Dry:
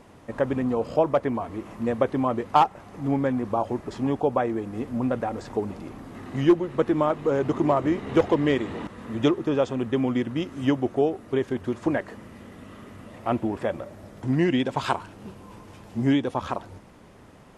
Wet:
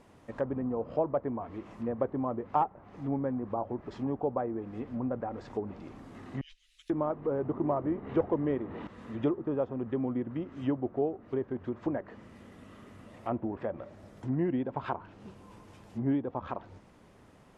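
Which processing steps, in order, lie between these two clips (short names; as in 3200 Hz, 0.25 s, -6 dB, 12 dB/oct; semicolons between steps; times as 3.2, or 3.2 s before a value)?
6.41–6.9 inverse Chebyshev band-stop 100–790 Hz, stop band 70 dB; treble ducked by the level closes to 1100 Hz, closed at -22 dBFS; gain -7.5 dB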